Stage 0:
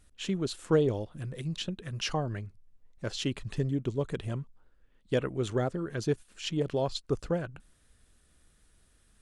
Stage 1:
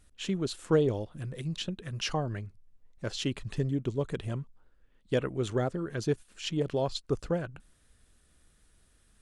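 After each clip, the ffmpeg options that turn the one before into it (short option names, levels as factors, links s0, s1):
-af anull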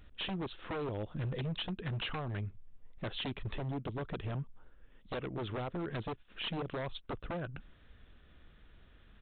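-af "acompressor=threshold=0.0126:ratio=5,aresample=8000,aeval=exprs='0.0133*(abs(mod(val(0)/0.0133+3,4)-2)-1)':c=same,aresample=44100,volume=2"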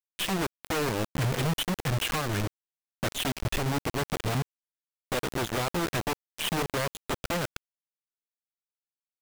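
-af "acrusher=bits=5:mix=0:aa=0.000001,volume=2.11"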